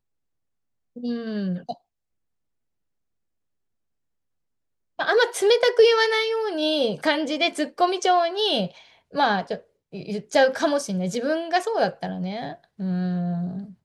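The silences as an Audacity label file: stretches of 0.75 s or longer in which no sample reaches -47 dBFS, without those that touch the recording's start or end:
1.760000	4.990000	silence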